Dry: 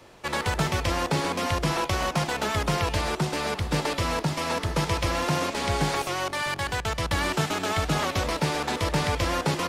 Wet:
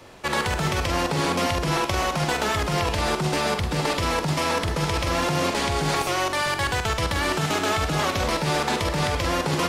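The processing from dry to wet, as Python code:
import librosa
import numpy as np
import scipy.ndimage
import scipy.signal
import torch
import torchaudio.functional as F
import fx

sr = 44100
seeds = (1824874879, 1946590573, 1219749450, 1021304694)

p1 = fx.over_compress(x, sr, threshold_db=-27.0, ratio=-0.5)
p2 = x + (p1 * librosa.db_to_amplitude(3.0))
p3 = fx.doubler(p2, sr, ms=46.0, db=-8.0)
y = p3 * librosa.db_to_amplitude(-4.5)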